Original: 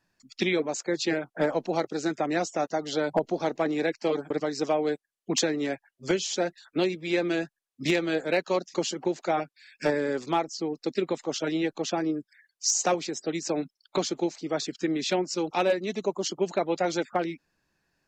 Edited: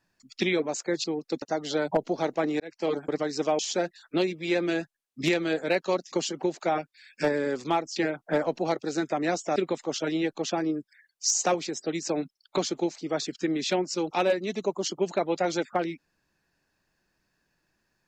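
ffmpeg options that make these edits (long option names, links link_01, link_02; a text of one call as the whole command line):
ffmpeg -i in.wav -filter_complex "[0:a]asplit=7[link_01][link_02][link_03][link_04][link_05][link_06][link_07];[link_01]atrim=end=1.042[link_08];[link_02]atrim=start=10.578:end=10.962[link_09];[link_03]atrim=start=2.638:end=3.82,asetpts=PTS-STARTPTS,afade=type=out:start_time=1.178:duration=0.004:curve=hsin[link_10];[link_04]atrim=start=3.82:end=4.812,asetpts=PTS-STARTPTS,afade=type=in:duration=0.31[link_11];[link_05]atrim=start=6.208:end=10.582[link_12];[link_06]atrim=start=1.038:end=2.642[link_13];[link_07]atrim=start=10.958[link_14];[link_08][link_09]acrossfade=duration=0.004:curve1=hsin:curve2=hsin[link_15];[link_10][link_11]concat=n=2:v=0:a=1[link_16];[link_15][link_16]acrossfade=duration=0.004:curve1=hsin:curve2=hsin[link_17];[link_17][link_12]acrossfade=duration=0.004:curve1=hsin:curve2=hsin[link_18];[link_18][link_13]acrossfade=duration=0.004:curve1=hsin:curve2=hsin[link_19];[link_19][link_14]acrossfade=duration=0.004:curve1=hsin:curve2=hsin" out.wav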